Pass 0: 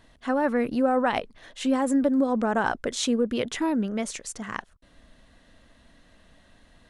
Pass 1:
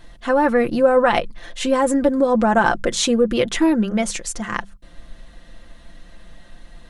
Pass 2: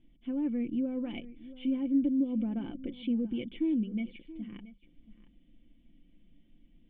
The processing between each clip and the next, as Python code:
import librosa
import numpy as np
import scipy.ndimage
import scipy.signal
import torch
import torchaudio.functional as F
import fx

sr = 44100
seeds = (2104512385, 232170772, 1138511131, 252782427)

y1 = fx.low_shelf(x, sr, hz=67.0, db=10.5)
y1 = fx.hum_notches(y1, sr, base_hz=50, count=4)
y1 = y1 + 0.56 * np.pad(y1, (int(5.8 * sr / 1000.0), 0))[:len(y1)]
y1 = y1 * 10.0 ** (7.0 / 20.0)
y2 = fx.formant_cascade(y1, sr, vowel='i')
y2 = y2 + 10.0 ** (-17.0 / 20.0) * np.pad(y2, (int(677 * sr / 1000.0), 0))[:len(y2)]
y2 = y2 * 10.0 ** (-6.5 / 20.0)